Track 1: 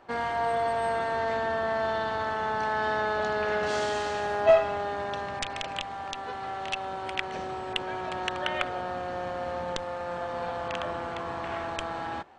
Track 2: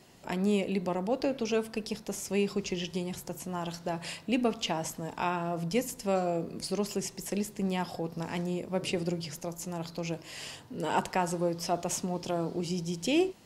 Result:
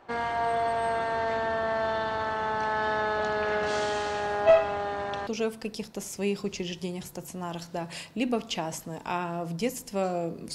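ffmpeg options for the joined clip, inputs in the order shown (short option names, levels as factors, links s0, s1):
-filter_complex "[0:a]apad=whole_dur=10.54,atrim=end=10.54,atrim=end=5.272[s0];[1:a]atrim=start=1.388:end=6.66[s1];[s0][s1]acrossfade=d=0.004:c1=hsin:c2=hsin"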